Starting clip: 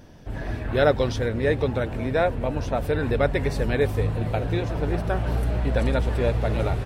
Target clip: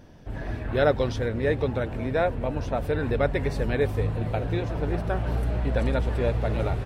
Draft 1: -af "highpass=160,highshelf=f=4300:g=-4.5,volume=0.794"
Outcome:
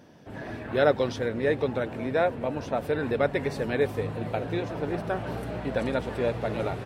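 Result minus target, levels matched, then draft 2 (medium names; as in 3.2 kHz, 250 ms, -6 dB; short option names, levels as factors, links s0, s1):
125 Hz band -5.5 dB
-af "highshelf=f=4300:g=-4.5,volume=0.794"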